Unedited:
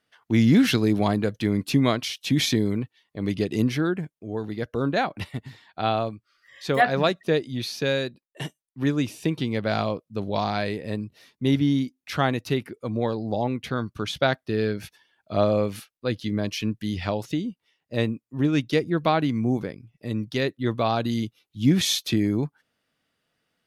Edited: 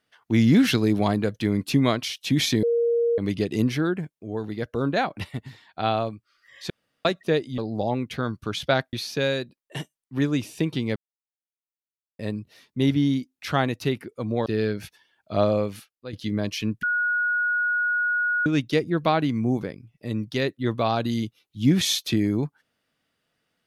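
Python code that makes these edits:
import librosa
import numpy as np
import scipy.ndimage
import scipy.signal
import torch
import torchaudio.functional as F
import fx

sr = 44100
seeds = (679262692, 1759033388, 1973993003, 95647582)

y = fx.edit(x, sr, fx.bleep(start_s=2.63, length_s=0.55, hz=469.0, db=-18.5),
    fx.room_tone_fill(start_s=6.7, length_s=0.35),
    fx.silence(start_s=9.61, length_s=1.23),
    fx.move(start_s=13.11, length_s=1.35, to_s=7.58),
    fx.fade_out_to(start_s=15.49, length_s=0.64, floor_db=-12.5),
    fx.bleep(start_s=16.83, length_s=1.63, hz=1450.0, db=-20.5), tone=tone)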